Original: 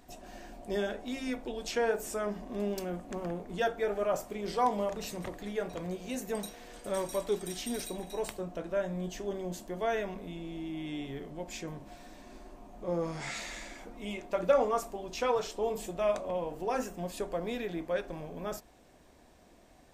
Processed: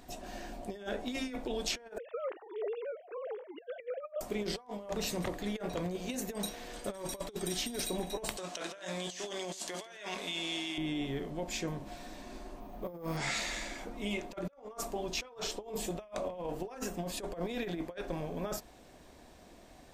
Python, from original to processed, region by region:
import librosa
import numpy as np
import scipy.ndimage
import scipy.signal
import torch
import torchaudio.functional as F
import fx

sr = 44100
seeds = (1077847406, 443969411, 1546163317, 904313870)

y = fx.chain(x, sr, fx.sine_speech(),
    fx.highpass(hz=350.0, slope=24), at=(1.98, 4.21))
y = fx.chain(y, sr, fx.weighting(curve='ITU-R 468'),
    fx.over_compress(threshold_db=-46.0, ratio=-1.0),
    fx.echo_single(ms=166, db=-19.5), at=(8.37, 10.78))
y = fx.chain(y, sr, fx.high_shelf(hz=6600.0, db=-6.5),
    fx.resample_bad(factor=3, down='filtered', up='hold'), at=(12.6, 13.17))
y = fx.over_compress(y, sr, threshold_db=-37.0, ratio=-0.5)
y = fx.peak_eq(y, sr, hz=4000.0, db=2.5, octaves=0.77)